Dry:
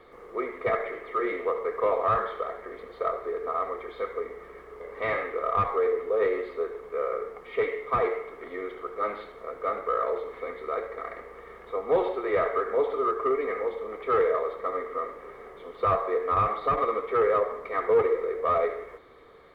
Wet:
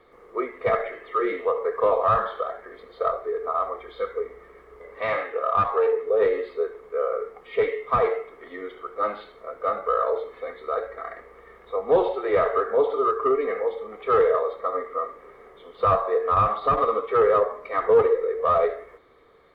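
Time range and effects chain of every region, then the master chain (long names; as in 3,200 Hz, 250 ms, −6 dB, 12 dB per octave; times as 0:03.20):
0:04.98–0:06.07: low-shelf EQ 130 Hz −8 dB + highs frequency-modulated by the lows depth 0.12 ms
whole clip: noise reduction from a noise print of the clip's start 8 dB; dynamic equaliser 2,000 Hz, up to −4 dB, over −44 dBFS, Q 2.7; level +4.5 dB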